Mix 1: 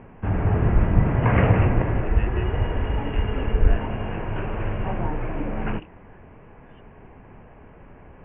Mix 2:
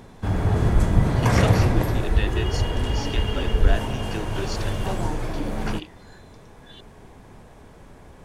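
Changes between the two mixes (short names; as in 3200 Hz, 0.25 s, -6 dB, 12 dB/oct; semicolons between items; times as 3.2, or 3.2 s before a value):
speech +7.0 dB; master: remove steep low-pass 2900 Hz 96 dB/oct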